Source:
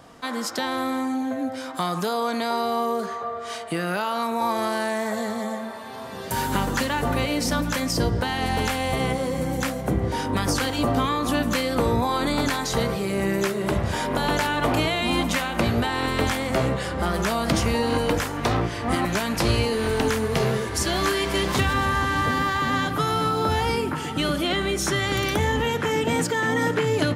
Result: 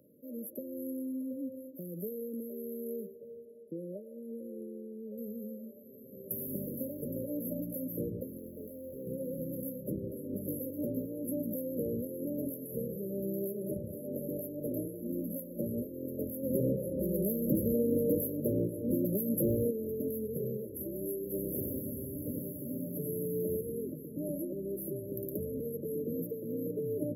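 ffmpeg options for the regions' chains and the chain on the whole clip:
-filter_complex "[0:a]asettb=1/sr,asplit=3[a][b][c];[a]atrim=end=3.454[d];[b]atrim=start=3.45:end=5.18,asetpts=PTS-STARTPTS,afade=t=in:d=0.004:c=qsin,afade=t=out:st=1.726:d=0.004:c=qsin,acrossover=split=4400[e][f];[f]acompressor=threshold=-55dB:ratio=4:attack=1:release=60[g];[e][g]amix=inputs=2:normalize=0,lowpass=f=11k:w=0.5412,lowpass=f=11k:w=1.3066,lowshelf=f=120:g=-10.5[h];[c]atrim=start=5.176[i];[d][h]acrossfade=d=0.004:c1=hsin:c2=qsin[j];[j][i]acrossfade=d=0.004:c1=qsin:c2=hsin,asettb=1/sr,asplit=3[k][l][m];[k]atrim=end=8.384[n];[l]atrim=start=8.38:end=9.07,asetpts=PTS-STARTPTS,afade=t=in:d=0.004:c=qsin,afade=t=out:st=0.686:d=0.004:c=qsin,acrossover=split=5500[o][p];[p]acompressor=threshold=-50dB:ratio=4:attack=1:release=60[q];[o][q]amix=inputs=2:normalize=0,equalizer=f=140:w=0.72:g=-7,asoftclip=type=hard:threshold=-25dB[r];[m]atrim=start=9.066[s];[n][r]acrossfade=d=0.004:c1=hsin:c2=qsin[t];[t][s]acrossfade=d=0.004:c1=qsin:c2=hsin,asettb=1/sr,asplit=3[u][v][w];[u]atrim=end=16.434[x];[v]atrim=start=16.43:end=19.71,asetpts=PTS-STARTPTS,afade=t=in:d=0.004:c=qsin,afade=t=out:st=3.276:d=0.004:c=qsin,acontrast=80,volume=8.5dB,asoftclip=hard,volume=-8.5dB[y];[w]atrim=start=19.706[z];[x][y]acrossfade=d=0.004:c1=hsin:c2=qsin[aa];[aa][z]acrossfade=d=0.004:c1=qsin:c2=hsin,asettb=1/sr,asplit=3[ab][ac][ad];[ab]atrim=end=21.234[ae];[ac]atrim=start=21.23:end=23.61,asetpts=PTS-STARTPTS,afade=t=in:d=0.004:c=qsin,afade=t=out:st=2.376:d=0.004:c=qsin,highshelf=f=3.7k:g=5,volume=12dB,asoftclip=hard,volume=-12dB,aecho=1:1:91|182|273|364|455|546|637:0.631|0.334|0.177|0.0939|0.0498|0.0264|0.014,atrim=end_sample=104958[af];[ad]atrim=start=23.606[ag];[ae][af]acrossfade=d=0.004:c1=hsin:c2=qsin[ah];[ah][ag]acrossfade=d=0.004:c1=qsin:c2=hsin,highpass=170,afftfilt=real='re*(1-between(b*sr/4096,620,11000))':imag='im*(1-between(b*sr/4096,620,11000))':win_size=4096:overlap=0.75,lowshelf=f=770:t=q:w=1.5:g=-9"

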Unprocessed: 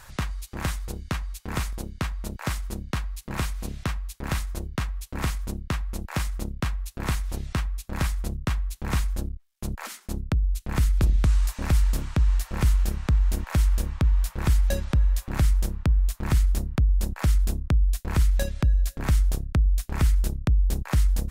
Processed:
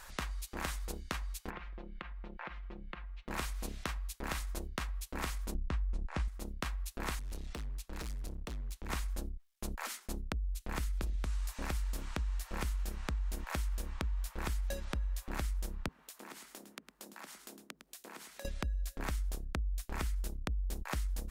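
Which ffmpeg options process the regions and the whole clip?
-filter_complex "[0:a]asettb=1/sr,asplit=3[a][b][c];[a]atrim=end=1.504[d];[b]atrim=start=1.5:end=3.28,asetpts=PTS-STARTPTS,afade=t=in:d=0.004:c=qsin,afade=t=out:st=1.776:d=0.004:c=qsin,lowpass=f=2.9k:w=0.5412,lowpass=f=2.9k:w=1.3066,aecho=1:1:5.7:0.67,atrim=end_sample=78498,acompressor=threshold=-35dB:ratio=16:attack=3.2:release=140:knee=1:detection=peak[e];[c]atrim=start=3.276[f];[d][e]acrossfade=d=0.004:c1=hsin:c2=qsin[g];[g][f]acrossfade=d=0.004:c1=qsin:c2=hsin,asettb=1/sr,asplit=3[h][i][j];[h]atrim=end=5.544[k];[i]atrim=start=5.54:end=6.28,asetpts=PTS-STARTPTS,afade=t=in:d=0.004:c=qsin,afade=t=out:st=0.736:d=0.004:c=qsin,lowpass=f=10k:w=0.5412,lowpass=f=10k:w=1.3066,aemphasis=mode=reproduction:type=bsi[l];[j]atrim=start=6.276[m];[k][l]acrossfade=d=0.004:c1=hsin:c2=qsin[n];[n][m]acrossfade=d=0.004:c1=qsin:c2=hsin,asettb=1/sr,asplit=3[o][p][q];[o]atrim=end=7.194[r];[p]atrim=start=7.19:end=8.9,asetpts=PTS-STARTPTS,afade=t=in:d=0.004:c=qsin,afade=t=out:st=1.706:d=0.004:c=qsin,highshelf=f=6.9k:g=-6.5,acrossover=split=210|3000[s][t][u];[t]acompressor=threshold=-56dB:ratio=1.5:attack=3.2:release=140:knee=2.83:detection=peak[v];[s][v][u]amix=inputs=3:normalize=0,asoftclip=type=hard:threshold=-30.5dB[w];[q]atrim=start=8.896[x];[r][w]acrossfade=d=0.004:c1=hsin:c2=qsin[y];[y][x]acrossfade=d=0.004:c1=qsin:c2=hsin,asettb=1/sr,asplit=3[z][aa][ab];[z]atrim=end=15.884[ac];[aa]atrim=start=15.88:end=18.45,asetpts=PTS-STARTPTS,afade=t=in:d=0.004:c=qsin,afade=t=out:st=2.566:d=0.004:c=qsin,highpass=f=220:w=0.5412,highpass=f=220:w=1.3066,acompressor=threshold=-43dB:ratio=5:attack=3.2:release=140:knee=1:detection=peak,aecho=1:1:107:0.335,atrim=end_sample=113337[ad];[ab]atrim=start=18.446[ae];[ac][ad]acrossfade=d=0.004:c1=hsin:c2=qsin[af];[af][ae]acrossfade=d=0.004:c1=qsin:c2=hsin,equalizer=f=110:w=1.1:g=-15,acompressor=threshold=-31dB:ratio=4,volume=-3dB"

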